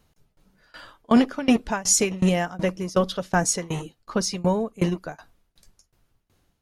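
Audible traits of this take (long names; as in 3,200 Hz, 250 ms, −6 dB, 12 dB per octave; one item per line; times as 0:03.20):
tremolo saw down 2.7 Hz, depth 95%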